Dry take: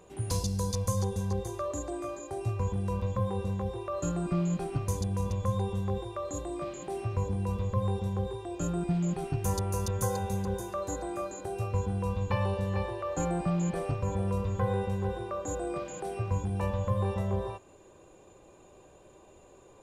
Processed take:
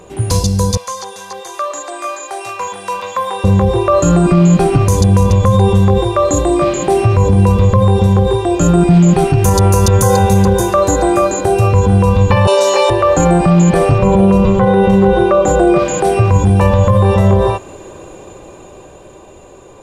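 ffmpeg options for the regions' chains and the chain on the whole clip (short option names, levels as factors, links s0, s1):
-filter_complex "[0:a]asettb=1/sr,asplit=3[s0][s1][s2];[s0]atrim=end=0.774[s3];[s1]atrim=start=0.77:end=3.44,asetpts=PTS-STARTPTS,afade=t=in:d=0.004:c=qsin,afade=t=out:st=2.666:d=0.004:c=qsin,acrossover=split=6200[s4][s5];[s5]acompressor=threshold=0.00158:ratio=4:attack=1:release=60[s6];[s4][s6]amix=inputs=2:normalize=0,highpass=1000[s7];[s2]atrim=start=3.436[s8];[s3][s7]acrossfade=d=0.004:c1=hsin:c2=qsin[s9];[s9][s8]acrossfade=d=0.004:c1=qsin:c2=hsin,asettb=1/sr,asplit=3[s10][s11][s12];[s10]atrim=end=12.474[s13];[s11]atrim=start=12.47:end=12.9,asetpts=PTS-STARTPTS,afade=t=in:d=0.004:c=qsin,afade=t=out:st=0.426:d=0.004:c=qsin,highpass=f=390:w=0.5412,highpass=f=390:w=1.3066,equalizer=f=6200:t=o:w=1.1:g=14,aecho=1:1:7.1:0.97,atrim=end_sample=18963[s14];[s12]atrim=start=12.896[s15];[s13][s14]acrossfade=d=0.004:c1=hsin:c2=qsin[s16];[s16][s15]acrossfade=d=0.004:c1=qsin:c2=hsin,asettb=1/sr,asplit=3[s17][s18][s19];[s17]atrim=end=13.984[s20];[s18]atrim=start=13.98:end=15.79,asetpts=PTS-STARTPTS,afade=t=in:d=0.004:c=qsin,afade=t=out:st=1.806:d=0.004:c=qsin,highshelf=f=5900:g=-9.5,aecho=1:1:5.4:0.74,atrim=end_sample=79821[s21];[s19]atrim=start=15.786[s22];[s20][s21]acrossfade=d=0.004:c1=hsin:c2=qsin[s23];[s23][s22]acrossfade=d=0.004:c1=qsin:c2=hsin,highshelf=f=10000:g=-3.5,dynaudnorm=f=220:g=17:m=2.24,alimiter=level_in=7.94:limit=0.891:release=50:level=0:latency=1,volume=0.891"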